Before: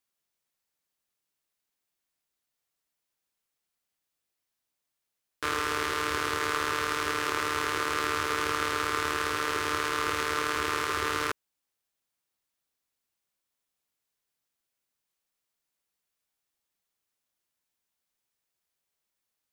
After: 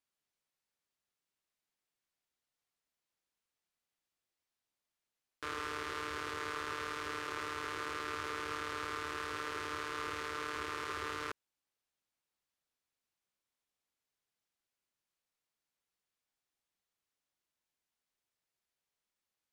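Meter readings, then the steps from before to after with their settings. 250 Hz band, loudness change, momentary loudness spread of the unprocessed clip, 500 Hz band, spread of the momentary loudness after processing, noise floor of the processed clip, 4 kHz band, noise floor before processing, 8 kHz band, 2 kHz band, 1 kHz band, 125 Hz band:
−10.5 dB, −11.0 dB, 1 LU, −10.5 dB, 1 LU, below −85 dBFS, −11.5 dB, −85 dBFS, −14.0 dB, −10.5 dB, −10.5 dB, −10.5 dB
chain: brickwall limiter −21 dBFS, peak gain reduction 10 dB
high-shelf EQ 10,000 Hz −11 dB
level −3.5 dB

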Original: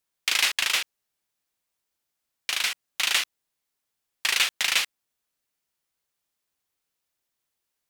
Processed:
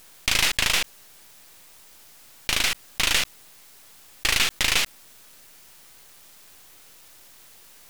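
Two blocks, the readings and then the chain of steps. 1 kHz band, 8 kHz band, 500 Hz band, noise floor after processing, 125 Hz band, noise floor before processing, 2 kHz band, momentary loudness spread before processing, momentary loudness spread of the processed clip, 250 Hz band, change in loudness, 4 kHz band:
+3.5 dB, +2.5 dB, +8.0 dB, −51 dBFS, can't be measured, −82 dBFS, +1.5 dB, 12 LU, 10 LU, +14.0 dB, +1.5 dB, +1.5 dB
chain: gain on one half-wave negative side −12 dB
envelope flattener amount 50%
level +3 dB

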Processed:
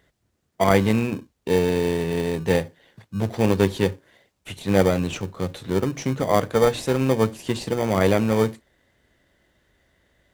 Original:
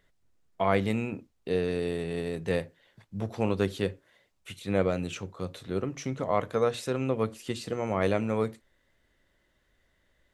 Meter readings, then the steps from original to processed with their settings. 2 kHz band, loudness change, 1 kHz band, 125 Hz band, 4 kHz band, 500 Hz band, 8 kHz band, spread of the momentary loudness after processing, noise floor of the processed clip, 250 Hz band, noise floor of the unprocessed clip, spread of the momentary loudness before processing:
+7.5 dB, +8.0 dB, +7.0 dB, +9.0 dB, +8.5 dB, +7.5 dB, +10.0 dB, 10 LU, −72 dBFS, +8.5 dB, −71 dBFS, 10 LU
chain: high-pass filter 53 Hz
in parallel at −7.5 dB: decimation without filtering 33×
on the sum: level +6 dB

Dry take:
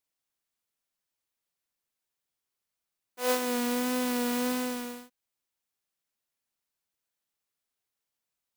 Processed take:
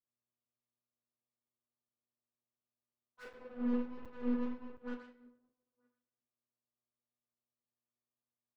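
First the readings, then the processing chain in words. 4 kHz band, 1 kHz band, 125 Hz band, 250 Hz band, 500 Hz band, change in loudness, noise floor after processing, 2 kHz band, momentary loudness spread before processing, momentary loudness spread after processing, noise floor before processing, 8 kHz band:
below −25 dB, −18.0 dB, can't be measured, −6.5 dB, −13.0 dB, −10.0 dB, below −85 dBFS, −17.5 dB, 9 LU, 19 LU, below −85 dBFS, below −35 dB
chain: treble cut that deepens with the level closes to 380 Hz, closed at −29.5 dBFS
parametric band 1,500 Hz +13.5 dB 1.5 octaves
hum with harmonics 120 Hz, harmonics 11, −68 dBFS −4 dB per octave
auto-filter low-pass saw up 8.3 Hz 380–4,500 Hz
high-shelf EQ 3,300 Hz +11.5 dB
single-tap delay 928 ms −18.5 dB
soft clipping −35 dBFS, distortion −6 dB
rectangular room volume 260 cubic metres, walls mixed, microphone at 1.4 metres
regular buffer underruns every 0.72 s, samples 256, zero, from 0:00.45
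expander for the loud parts 2.5 to 1, over −50 dBFS
level −4.5 dB

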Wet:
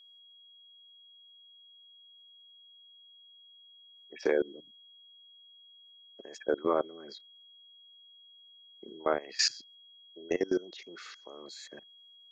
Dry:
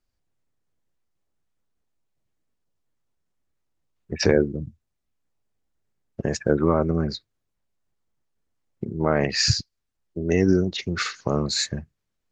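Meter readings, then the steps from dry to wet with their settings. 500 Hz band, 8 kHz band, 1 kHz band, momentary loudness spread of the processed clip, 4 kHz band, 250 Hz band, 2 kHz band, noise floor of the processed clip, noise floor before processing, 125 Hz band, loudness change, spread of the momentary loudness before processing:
−8.5 dB, −9.5 dB, −7.0 dB, 22 LU, −9.0 dB, −14.5 dB, −10.0 dB, −58 dBFS, −78 dBFS, −31.5 dB, −9.5 dB, 16 LU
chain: high-pass filter 330 Hz 24 dB per octave
output level in coarse steps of 22 dB
steady tone 3,300 Hz −51 dBFS
level −3.5 dB

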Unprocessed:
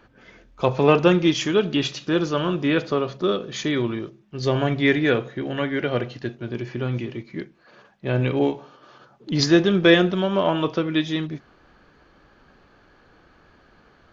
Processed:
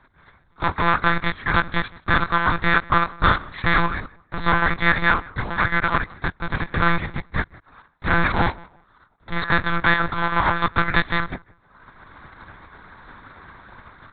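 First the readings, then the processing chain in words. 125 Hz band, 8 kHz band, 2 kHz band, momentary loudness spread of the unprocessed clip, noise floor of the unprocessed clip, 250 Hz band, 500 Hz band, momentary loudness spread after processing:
−1.0 dB, can't be measured, +8.5 dB, 16 LU, −56 dBFS, −7.0 dB, −9.5 dB, 10 LU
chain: compressing power law on the bin magnitudes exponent 0.37
dynamic equaliser 1,700 Hz, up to +4 dB, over −31 dBFS, Q 1.2
in parallel at −1.5 dB: brickwall limiter −8 dBFS, peak gain reduction 10 dB
on the sum: reverb reduction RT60 0.86 s
automatic gain control
leveller curve on the samples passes 1
phaser with its sweep stopped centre 1,200 Hz, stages 4
on a send: feedback echo with a low-pass in the loop 168 ms, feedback 24%, low-pass 2,500 Hz, level −22 dB
on the sum: one-pitch LPC vocoder at 8 kHz 170 Hz

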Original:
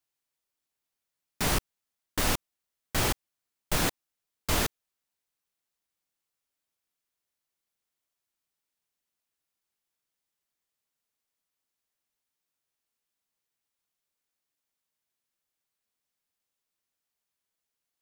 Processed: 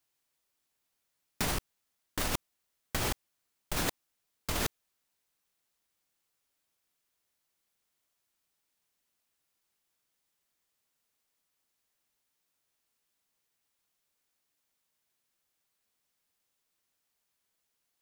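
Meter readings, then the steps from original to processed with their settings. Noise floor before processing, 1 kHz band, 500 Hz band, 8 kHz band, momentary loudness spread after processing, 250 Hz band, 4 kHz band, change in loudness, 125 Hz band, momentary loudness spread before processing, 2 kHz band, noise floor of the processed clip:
below −85 dBFS, −5.0 dB, −5.0 dB, −5.0 dB, 6 LU, −5.0 dB, −5.0 dB, −5.0 dB, −5.5 dB, 6 LU, −5.0 dB, −81 dBFS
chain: compressor whose output falls as the input rises −31 dBFS, ratio −1

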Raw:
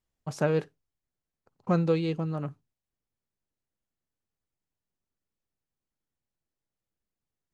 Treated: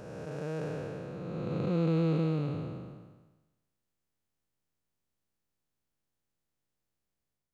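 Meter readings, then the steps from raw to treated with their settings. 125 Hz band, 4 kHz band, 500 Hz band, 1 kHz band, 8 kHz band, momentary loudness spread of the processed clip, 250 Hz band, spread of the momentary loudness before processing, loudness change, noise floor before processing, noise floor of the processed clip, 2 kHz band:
0.0 dB, −4.0 dB, −4.5 dB, −6.0 dB, can't be measured, 14 LU, −1.0 dB, 15 LU, −4.5 dB, below −85 dBFS, −85 dBFS, −6.0 dB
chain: spectrum smeared in time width 858 ms
automatic gain control gain up to 4.5 dB

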